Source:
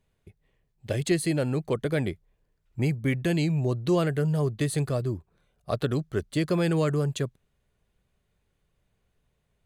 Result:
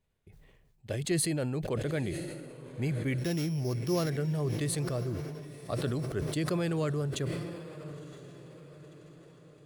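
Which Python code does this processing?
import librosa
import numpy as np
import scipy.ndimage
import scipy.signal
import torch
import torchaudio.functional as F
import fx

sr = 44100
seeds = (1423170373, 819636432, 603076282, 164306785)

y = fx.sample_sort(x, sr, block=8, at=(3.18, 4.1))
y = fx.echo_diffused(y, sr, ms=1009, feedback_pct=49, wet_db=-14)
y = fx.sustainer(y, sr, db_per_s=33.0)
y = F.gain(torch.from_numpy(y), -6.5).numpy()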